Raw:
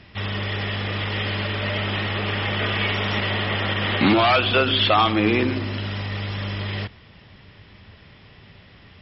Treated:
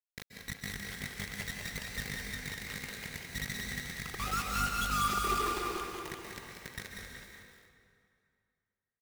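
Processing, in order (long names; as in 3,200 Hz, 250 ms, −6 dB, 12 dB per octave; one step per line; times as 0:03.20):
three sine waves on the formant tracks
low shelf with overshoot 780 Hz −7 dB, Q 3
reversed playback
downward compressor 12 to 1, threshold −29 dBFS, peak gain reduction 21.5 dB
reversed playback
spectral peaks only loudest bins 2
mains hum 50 Hz, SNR 21 dB
formants moved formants +4 semitones
bit reduction 6 bits
far-end echo of a speakerphone 370 ms, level −7 dB
dense smooth reverb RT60 2.4 s, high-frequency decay 0.8×, pre-delay 120 ms, DRR 0.5 dB
feedback echo at a low word length 190 ms, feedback 35%, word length 9 bits, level −5 dB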